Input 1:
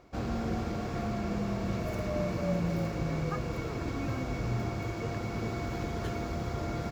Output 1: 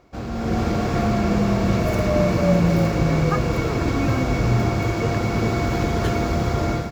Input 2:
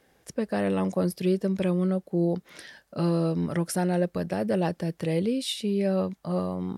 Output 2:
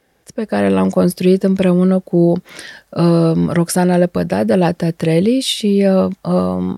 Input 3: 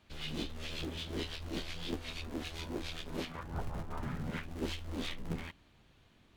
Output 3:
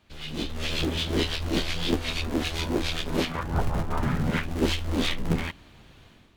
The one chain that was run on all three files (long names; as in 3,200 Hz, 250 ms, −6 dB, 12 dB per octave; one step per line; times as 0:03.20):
automatic gain control gain up to 10.5 dB
level +2.5 dB